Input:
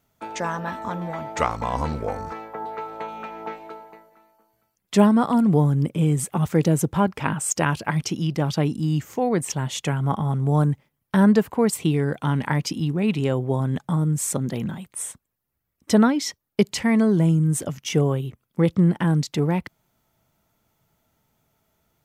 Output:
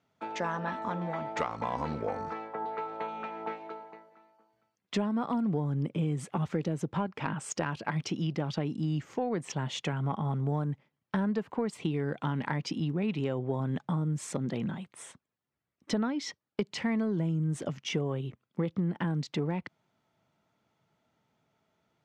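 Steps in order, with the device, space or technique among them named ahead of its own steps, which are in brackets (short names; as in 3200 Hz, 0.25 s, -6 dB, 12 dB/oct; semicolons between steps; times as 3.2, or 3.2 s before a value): AM radio (BPF 130–4300 Hz; compressor 6:1, threshold -23 dBFS, peak gain reduction 12.5 dB; soft clip -11.5 dBFS, distortion -29 dB); gain -3.5 dB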